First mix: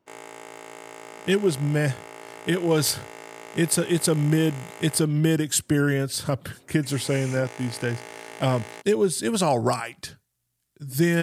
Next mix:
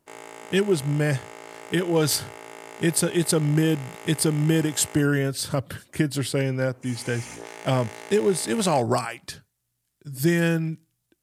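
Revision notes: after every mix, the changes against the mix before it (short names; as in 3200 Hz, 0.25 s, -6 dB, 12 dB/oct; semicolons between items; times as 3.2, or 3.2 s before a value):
speech: entry -0.75 s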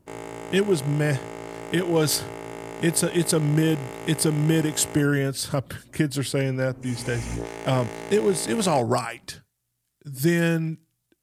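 background: remove HPF 890 Hz 6 dB/oct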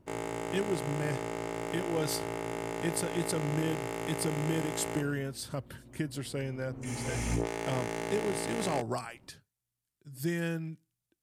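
speech -11.5 dB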